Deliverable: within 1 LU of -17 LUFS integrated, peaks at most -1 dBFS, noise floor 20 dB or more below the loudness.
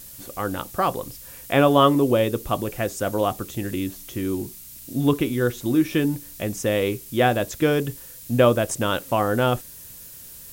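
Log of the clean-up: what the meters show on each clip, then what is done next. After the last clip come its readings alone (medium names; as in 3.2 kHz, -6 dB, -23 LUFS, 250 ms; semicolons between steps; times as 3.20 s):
noise floor -42 dBFS; noise floor target -43 dBFS; loudness -23.0 LUFS; peak level -4.0 dBFS; loudness target -17.0 LUFS
-> noise print and reduce 6 dB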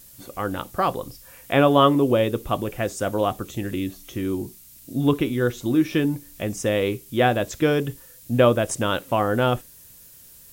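noise floor -48 dBFS; loudness -23.0 LUFS; peak level -4.0 dBFS; loudness target -17.0 LUFS
-> trim +6 dB; peak limiter -1 dBFS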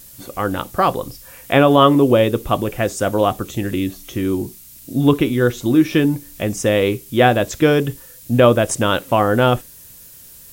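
loudness -17.0 LUFS; peak level -1.0 dBFS; noise floor -42 dBFS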